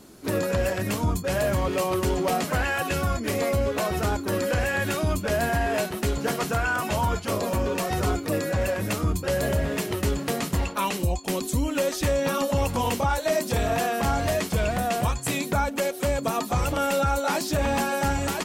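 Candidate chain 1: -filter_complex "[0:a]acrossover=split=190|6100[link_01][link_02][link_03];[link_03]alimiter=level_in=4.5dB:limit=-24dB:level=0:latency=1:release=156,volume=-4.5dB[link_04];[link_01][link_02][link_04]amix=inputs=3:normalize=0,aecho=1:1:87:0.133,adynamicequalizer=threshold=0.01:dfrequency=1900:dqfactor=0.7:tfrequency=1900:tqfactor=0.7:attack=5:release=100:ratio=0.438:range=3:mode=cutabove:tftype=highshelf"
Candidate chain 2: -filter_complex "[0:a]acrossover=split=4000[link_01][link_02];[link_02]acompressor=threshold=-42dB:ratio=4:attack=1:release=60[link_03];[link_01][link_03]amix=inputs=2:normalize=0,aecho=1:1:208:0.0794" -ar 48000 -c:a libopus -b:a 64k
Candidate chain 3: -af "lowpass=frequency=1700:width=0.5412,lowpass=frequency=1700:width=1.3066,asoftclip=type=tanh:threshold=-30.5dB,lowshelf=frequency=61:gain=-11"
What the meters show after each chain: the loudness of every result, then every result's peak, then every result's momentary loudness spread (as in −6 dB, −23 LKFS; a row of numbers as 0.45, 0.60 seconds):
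−26.0, −26.0, −34.5 LKFS; −10.5, −14.5, −26.5 dBFS; 3, 3, 2 LU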